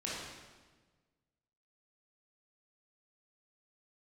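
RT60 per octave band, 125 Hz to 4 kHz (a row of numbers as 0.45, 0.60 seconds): 1.8, 1.6, 1.4, 1.3, 1.2, 1.1 seconds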